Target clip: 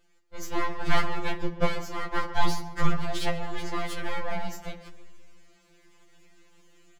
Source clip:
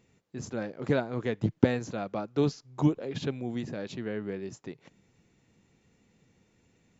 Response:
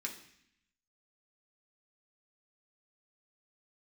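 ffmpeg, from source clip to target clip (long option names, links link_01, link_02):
-filter_complex "[0:a]dynaudnorm=framelen=280:gausssize=3:maxgain=9dB,bandreject=frequency=60:width_type=h:width=6,bandreject=frequency=120:width_type=h:width=6,bandreject=frequency=180:width_type=h:width=6,bandreject=frequency=240:width_type=h:width=6,bandreject=frequency=300:width_type=h:width=6,bandreject=frequency=360:width_type=h:width=6,bandreject=frequency=420:width_type=h:width=6,bandreject=frequency=480:width_type=h:width=6,bandreject=frequency=540:width_type=h:width=6,aeval=exprs='abs(val(0))':channel_layout=same,asplit=2[link_01][link_02];[link_02]adelay=136,lowpass=frequency=1500:poles=1,volume=-11dB,asplit=2[link_03][link_04];[link_04]adelay=136,lowpass=frequency=1500:poles=1,volume=0.42,asplit=2[link_05][link_06];[link_06]adelay=136,lowpass=frequency=1500:poles=1,volume=0.42,asplit=2[link_07][link_08];[link_08]adelay=136,lowpass=frequency=1500:poles=1,volume=0.42[link_09];[link_01][link_03][link_05][link_07][link_09]amix=inputs=5:normalize=0,asplit=2[link_10][link_11];[1:a]atrim=start_sample=2205,asetrate=37044,aresample=44100[link_12];[link_11][link_12]afir=irnorm=-1:irlink=0,volume=-6dB[link_13];[link_10][link_13]amix=inputs=2:normalize=0,afftfilt=real='re*2.83*eq(mod(b,8),0)':imag='im*2.83*eq(mod(b,8),0)':win_size=2048:overlap=0.75"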